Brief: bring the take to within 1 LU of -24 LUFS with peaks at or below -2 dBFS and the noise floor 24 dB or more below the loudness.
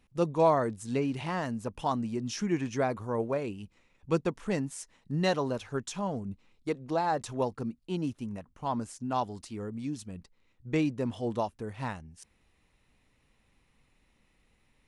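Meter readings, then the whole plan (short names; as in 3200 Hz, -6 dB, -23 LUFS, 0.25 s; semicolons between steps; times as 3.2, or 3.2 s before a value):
loudness -32.5 LUFS; peak -13.0 dBFS; loudness target -24.0 LUFS
-> gain +8.5 dB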